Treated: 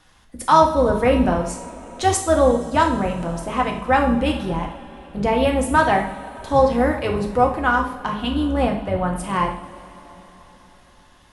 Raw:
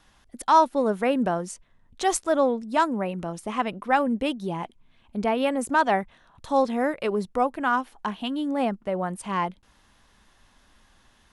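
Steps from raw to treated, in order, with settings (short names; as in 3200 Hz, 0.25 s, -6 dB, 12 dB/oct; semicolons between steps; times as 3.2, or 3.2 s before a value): octaver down 2 oct, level -3 dB; two-slope reverb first 0.53 s, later 4.7 s, from -20 dB, DRR 1 dB; gain +3 dB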